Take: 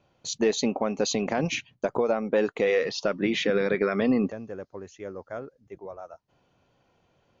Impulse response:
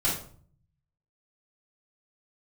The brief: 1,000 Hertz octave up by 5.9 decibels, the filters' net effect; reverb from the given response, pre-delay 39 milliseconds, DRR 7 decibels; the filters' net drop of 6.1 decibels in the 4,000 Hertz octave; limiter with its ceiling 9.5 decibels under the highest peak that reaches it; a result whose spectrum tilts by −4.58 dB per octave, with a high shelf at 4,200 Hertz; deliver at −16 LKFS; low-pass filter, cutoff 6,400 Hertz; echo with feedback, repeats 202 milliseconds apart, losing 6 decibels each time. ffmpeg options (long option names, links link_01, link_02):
-filter_complex "[0:a]lowpass=6400,equalizer=frequency=1000:width_type=o:gain=9,equalizer=frequency=4000:width_type=o:gain=-4.5,highshelf=frequency=4200:gain=-5.5,alimiter=limit=-18.5dB:level=0:latency=1,aecho=1:1:202|404|606|808|1010|1212:0.501|0.251|0.125|0.0626|0.0313|0.0157,asplit=2[link_01][link_02];[1:a]atrim=start_sample=2205,adelay=39[link_03];[link_02][link_03]afir=irnorm=-1:irlink=0,volume=-17dB[link_04];[link_01][link_04]amix=inputs=2:normalize=0,volume=12.5dB"